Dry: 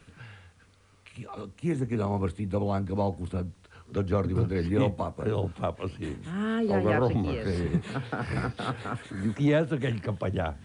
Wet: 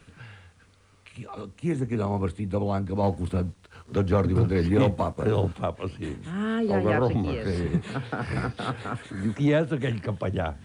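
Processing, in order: 3.03–5.57 sample leveller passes 1; gain +1.5 dB

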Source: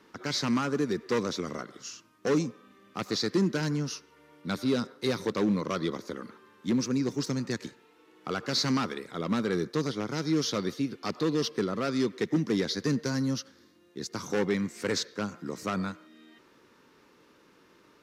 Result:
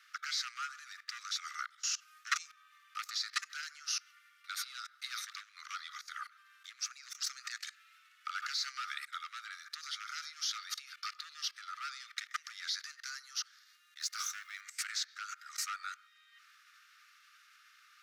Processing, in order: 14–14.61 G.711 law mismatch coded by mu; level quantiser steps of 23 dB; Chebyshev high-pass 1200 Hz, order 8; gain +12 dB

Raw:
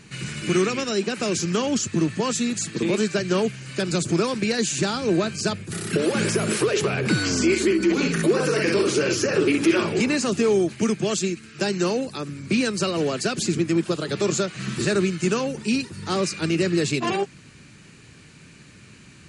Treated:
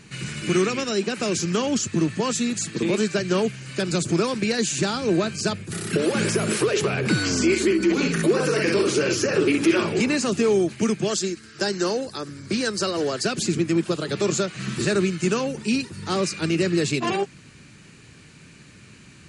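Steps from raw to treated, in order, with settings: 11.08–13.25 thirty-one-band EQ 160 Hz -10 dB, 250 Hz -5 dB, 1600 Hz +3 dB, 2500 Hz -8 dB, 5000 Hz +5 dB

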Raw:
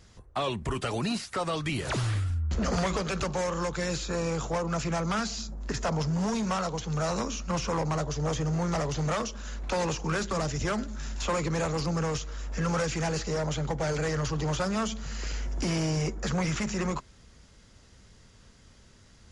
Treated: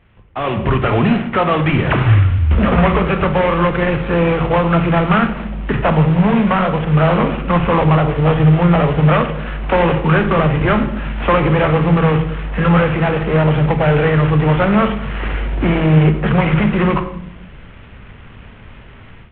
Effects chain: CVSD 16 kbps; on a send at -7.5 dB: reverb RT60 0.75 s, pre-delay 20 ms; on the sum: AGC gain up to 14.5 dB; gain +1.5 dB

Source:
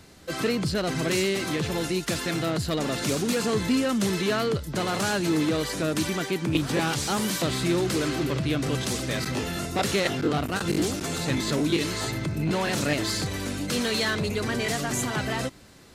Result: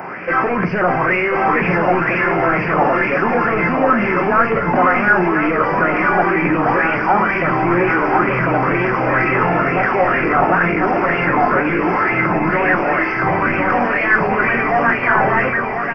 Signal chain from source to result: HPF 110 Hz; bell 2400 Hz +5 dB 0.32 oct; in parallel at +1 dB: negative-ratio compressor -31 dBFS; on the sum: overdrive pedal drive 27 dB, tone 3900 Hz, clips at -8 dBFS; echo 1.042 s -4 dB; reverb RT60 0.50 s, pre-delay 5 ms, DRR 6 dB; downsampling 11025 Hz; Butterworth band-stop 3900 Hz, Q 0.63; LFO bell 2.1 Hz 770–2500 Hz +12 dB; gain -3.5 dB

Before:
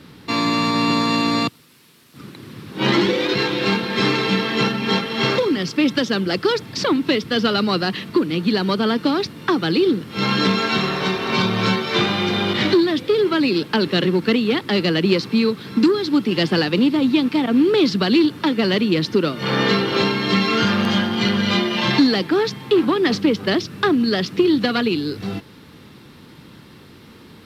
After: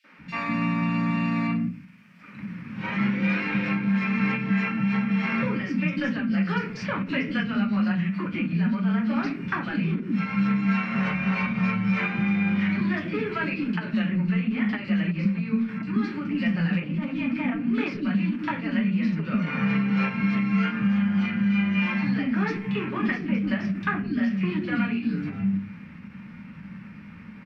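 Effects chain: in parallel at -10.5 dB: hard clip -15.5 dBFS, distortion -12 dB; on the sum: EQ curve 140 Hz 0 dB, 200 Hz +13 dB, 350 Hz -13 dB, 600 Hz -4 dB, 860 Hz -5 dB, 2400 Hz +6 dB, 3700 Hz -15 dB, 5800 Hz -13 dB, 10000 Hz -22 dB; reverb RT60 0.35 s, pre-delay 3 ms, DRR -2 dB; compressor, threshold -13 dBFS, peak gain reduction 13.5 dB; three bands offset in time highs, mids, lows 40/190 ms, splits 340/3400 Hz; ending taper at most 180 dB/s; gain -7.5 dB

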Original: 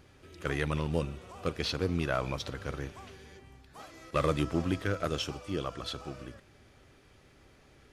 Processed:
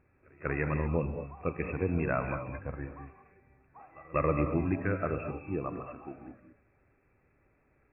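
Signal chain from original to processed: on a send: reverse echo 0.191 s -19.5 dB; on the sum: spectral noise reduction 10 dB; brick-wall FIR low-pass 2700 Hz; non-linear reverb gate 0.25 s rising, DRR 7 dB

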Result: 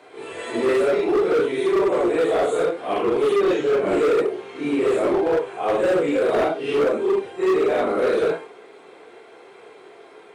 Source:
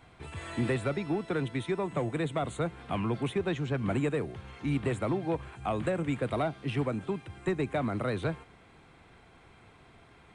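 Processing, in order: phase scrambler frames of 0.2 s; resonant high-pass 420 Hz, resonance Q 4; hard clip -24 dBFS, distortion -10 dB; gain +8.5 dB

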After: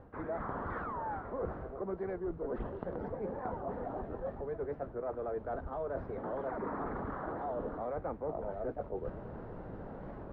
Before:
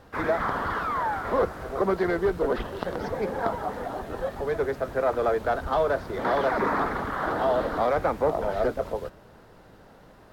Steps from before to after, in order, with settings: LPF 2000 Hz 12 dB/oct; tilt shelf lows +7 dB, about 1300 Hz; reverse; compressor 5:1, threshold -40 dBFS, peak gain reduction 22.5 dB; reverse; record warp 45 rpm, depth 160 cents; gain +2 dB

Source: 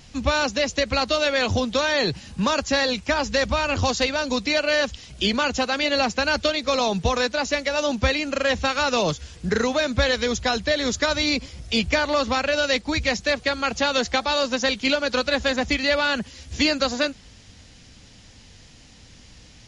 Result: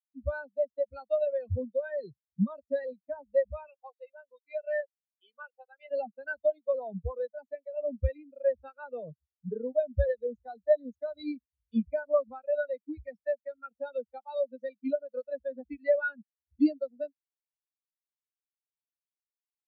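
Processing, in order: 3.68–5.91 BPF 520–4900 Hz; spectral expander 4:1; gain -5 dB

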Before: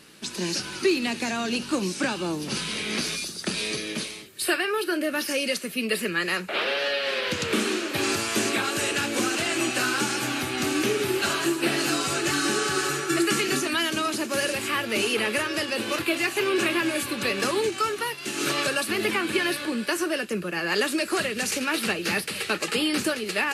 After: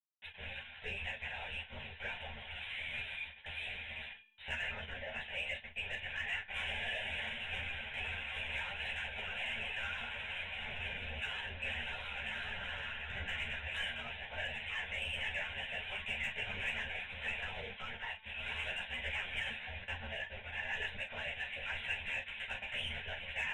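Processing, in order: bit-crush 5-bit; tilt +4 dB/oct; LPC vocoder at 8 kHz whisper; resonator 220 Hz, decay 1 s, mix 50%; reverse; upward compressor, threshold -33 dBFS; reverse; low shelf 240 Hz -6.5 dB; soft clip -21 dBFS, distortion -20 dB; fixed phaser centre 1200 Hz, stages 6; reverb, pre-delay 6 ms, DRR 5 dB; ensemble effect; gain -4.5 dB

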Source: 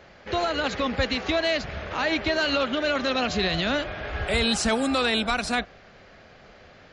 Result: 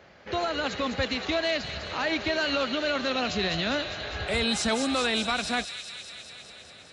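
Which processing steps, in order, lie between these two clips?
HPF 66 Hz; thin delay 0.202 s, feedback 75%, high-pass 3000 Hz, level -5.5 dB; gain -3 dB

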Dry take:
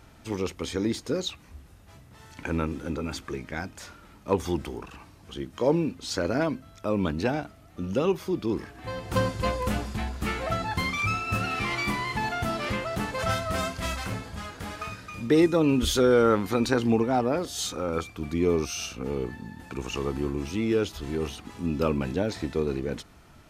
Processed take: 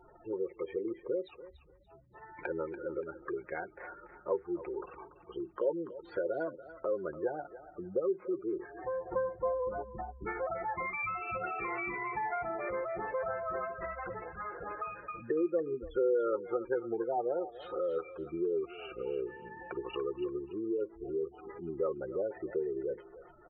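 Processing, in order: LPF 2200 Hz 24 dB/oct; spectral gate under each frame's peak -15 dB strong; resonant low shelf 310 Hz -11 dB, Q 3; comb 5.6 ms, depth 57%; compressor 2:1, threshold -39 dBFS, peak gain reduction 15 dB; thinning echo 0.288 s, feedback 30%, high-pass 770 Hz, level -11 dB

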